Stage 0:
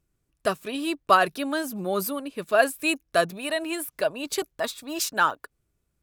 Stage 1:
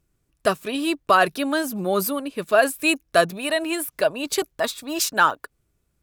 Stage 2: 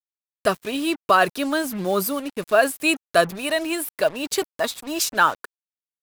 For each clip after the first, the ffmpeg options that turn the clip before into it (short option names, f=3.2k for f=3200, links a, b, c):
-af "alimiter=level_in=9dB:limit=-1dB:release=50:level=0:latency=1,volume=-4.5dB"
-af "acrusher=bits=5:mix=0:aa=0.5"